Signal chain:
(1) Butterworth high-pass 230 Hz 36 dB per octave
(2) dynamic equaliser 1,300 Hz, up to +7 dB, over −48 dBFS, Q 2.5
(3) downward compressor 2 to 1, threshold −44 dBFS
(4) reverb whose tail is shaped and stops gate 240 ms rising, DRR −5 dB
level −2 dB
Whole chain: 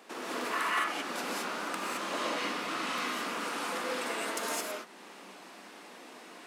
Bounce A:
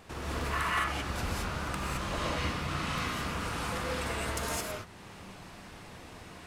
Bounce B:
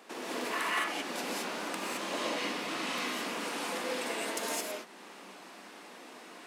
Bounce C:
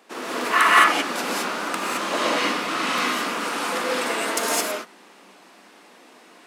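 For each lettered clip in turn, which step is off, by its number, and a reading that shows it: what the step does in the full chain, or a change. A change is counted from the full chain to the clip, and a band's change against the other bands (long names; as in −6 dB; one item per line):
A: 1, 125 Hz band +21.0 dB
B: 2, change in momentary loudness spread −1 LU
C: 3, average gain reduction 10.0 dB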